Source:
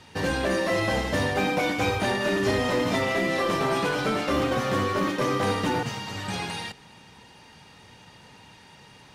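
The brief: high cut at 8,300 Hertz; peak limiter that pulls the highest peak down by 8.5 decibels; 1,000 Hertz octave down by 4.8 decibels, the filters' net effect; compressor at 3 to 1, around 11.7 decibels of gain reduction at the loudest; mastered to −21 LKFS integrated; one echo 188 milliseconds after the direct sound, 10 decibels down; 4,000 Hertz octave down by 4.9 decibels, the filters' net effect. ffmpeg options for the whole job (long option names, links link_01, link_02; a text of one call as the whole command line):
ffmpeg -i in.wav -af "lowpass=8300,equalizer=frequency=1000:width_type=o:gain=-6,equalizer=frequency=4000:width_type=o:gain=-6,acompressor=threshold=-39dB:ratio=3,alimiter=level_in=10.5dB:limit=-24dB:level=0:latency=1,volume=-10.5dB,aecho=1:1:188:0.316,volume=22.5dB" out.wav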